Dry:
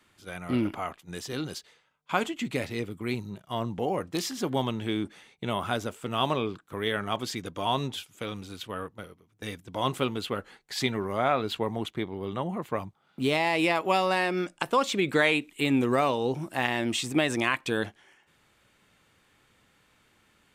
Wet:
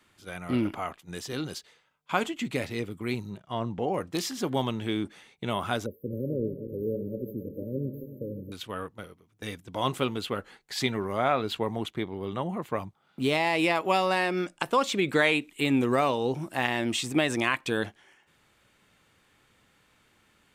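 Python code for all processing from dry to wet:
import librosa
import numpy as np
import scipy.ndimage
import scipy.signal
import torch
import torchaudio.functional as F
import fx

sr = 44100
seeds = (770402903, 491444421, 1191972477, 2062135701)

y = fx.chain(x, sr, fx.lowpass(hz=8800.0, slope=12),
    fx.high_shelf(hz=3800.0, db=-7.0), at=(3.37, 3.94))
y = fx.chain(y, sr, fx.reverse_delay_fb(ms=136, feedback_pct=70, wet_db=-10),
    fx.brickwall_bandstop(low_hz=590.0, high_hz=12000.0), at=(5.86, 8.52))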